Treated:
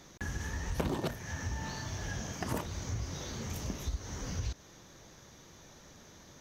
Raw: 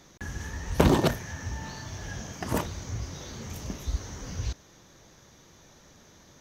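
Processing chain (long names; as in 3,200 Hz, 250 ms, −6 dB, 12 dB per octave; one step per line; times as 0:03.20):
downward compressor 4 to 1, threshold −32 dBFS, peak gain reduction 15 dB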